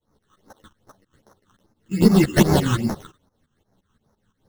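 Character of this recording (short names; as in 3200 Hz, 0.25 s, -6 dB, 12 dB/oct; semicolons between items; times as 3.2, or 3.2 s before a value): aliases and images of a low sample rate 2400 Hz, jitter 0%; phasing stages 8, 2.5 Hz, lowest notch 600–3100 Hz; tremolo saw up 5.8 Hz, depth 90%; a shimmering, thickened sound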